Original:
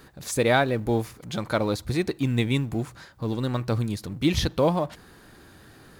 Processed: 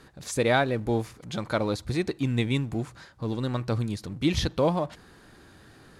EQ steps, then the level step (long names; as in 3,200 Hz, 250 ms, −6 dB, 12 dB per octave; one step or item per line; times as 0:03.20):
low-pass filter 10,000 Hz 12 dB per octave
−2.0 dB